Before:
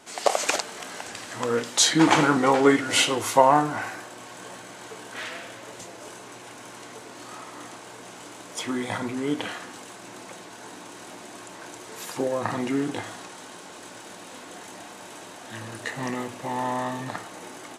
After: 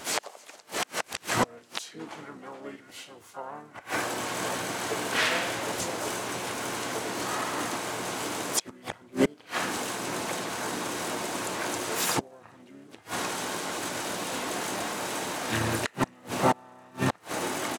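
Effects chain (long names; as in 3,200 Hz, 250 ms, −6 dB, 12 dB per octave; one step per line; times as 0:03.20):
gate with flip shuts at −20 dBFS, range −33 dB
pitch-shifted copies added −5 semitones −10 dB, +5 semitones −9 dB, +7 semitones −9 dB
level +8.5 dB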